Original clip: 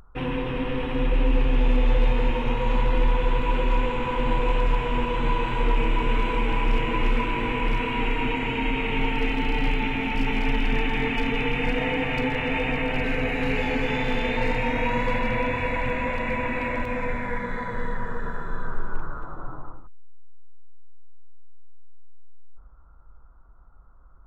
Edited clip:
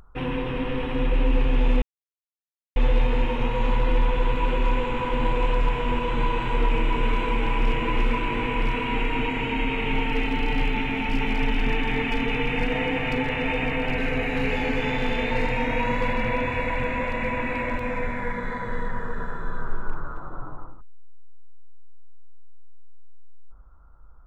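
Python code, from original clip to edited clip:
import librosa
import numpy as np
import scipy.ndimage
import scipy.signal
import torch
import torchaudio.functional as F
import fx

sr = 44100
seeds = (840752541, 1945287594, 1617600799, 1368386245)

y = fx.edit(x, sr, fx.insert_silence(at_s=1.82, length_s=0.94), tone=tone)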